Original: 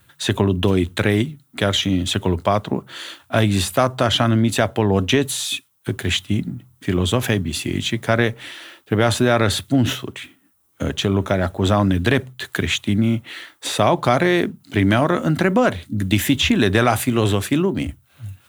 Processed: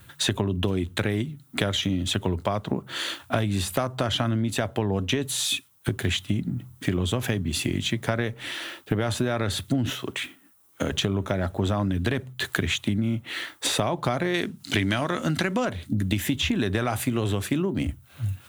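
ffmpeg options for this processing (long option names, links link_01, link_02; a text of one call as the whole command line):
ffmpeg -i in.wav -filter_complex "[0:a]asettb=1/sr,asplit=3[link_01][link_02][link_03];[link_01]atrim=end=9.904[link_04];[link_02]atrim=start=9.9:end=10.92,asetpts=PTS-STARTPTS,afade=type=in:duration=0.004:curve=qsin,afade=type=out:start_time=1.016:duration=0.004:curve=qsin,lowshelf=frequency=210:gain=-12[link_05];[link_03]atrim=start=10.916[link_06];[link_04][link_05]acrossfade=duration=0.004:curve1=hsin:curve2=qsin[link_07];[link_07][link_06]acrossfade=duration=0.004:curve1=qsin:curve2=hsin,asettb=1/sr,asplit=3[link_08][link_09][link_10];[link_08]atrim=end=14.344[link_11];[link_09]atrim=start=14.34:end=15.65,asetpts=PTS-STARTPTS,afade=type=in:duration=0.004:curve=qsin,afade=type=out:start_time=1.306:duration=0.004:curve=qsin,equalizer=frequency=5200:width=0.31:gain=11[link_12];[link_10]atrim=start=15.646[link_13];[link_11][link_12]acrossfade=duration=0.004:curve1=hsin:curve2=qsin[link_14];[link_14][link_13]acrossfade=duration=0.004:curve1=qsin:curve2=hsin,lowshelf=frequency=250:gain=3.5,acompressor=threshold=-26dB:ratio=6,volume=3.5dB" out.wav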